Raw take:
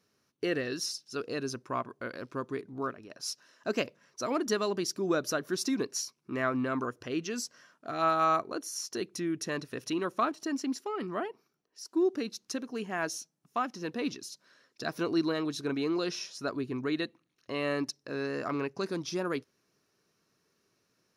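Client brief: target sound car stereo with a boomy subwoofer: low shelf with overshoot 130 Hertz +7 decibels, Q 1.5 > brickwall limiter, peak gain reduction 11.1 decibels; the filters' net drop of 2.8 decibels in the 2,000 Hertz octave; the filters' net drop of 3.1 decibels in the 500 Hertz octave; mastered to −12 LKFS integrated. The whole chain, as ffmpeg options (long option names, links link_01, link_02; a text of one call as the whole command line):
ffmpeg -i in.wav -af "lowshelf=frequency=130:width_type=q:width=1.5:gain=7,equalizer=frequency=500:width_type=o:gain=-3.5,equalizer=frequency=2000:width_type=o:gain=-3.5,volume=27.5dB,alimiter=limit=-2.5dB:level=0:latency=1" out.wav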